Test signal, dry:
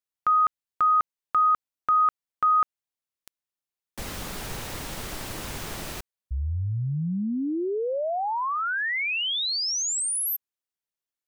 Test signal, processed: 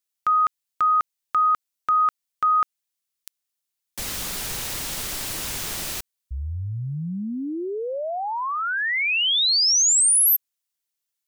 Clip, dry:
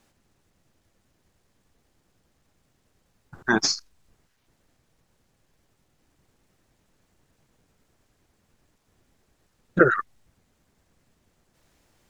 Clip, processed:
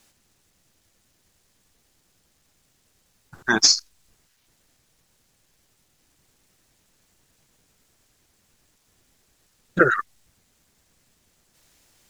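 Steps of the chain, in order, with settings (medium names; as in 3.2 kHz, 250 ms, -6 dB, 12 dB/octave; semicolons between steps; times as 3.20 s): treble shelf 2.3 kHz +12 dB; trim -1.5 dB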